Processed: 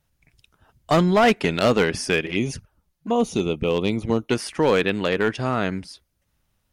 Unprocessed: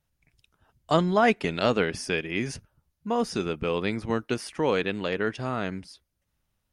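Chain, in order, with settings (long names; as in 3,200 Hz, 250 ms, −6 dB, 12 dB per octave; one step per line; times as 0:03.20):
0:02.26–0:04.30: flanger swept by the level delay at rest 6.8 ms, full sweep at −26.5 dBFS
gain into a clipping stage and back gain 18 dB
level +6.5 dB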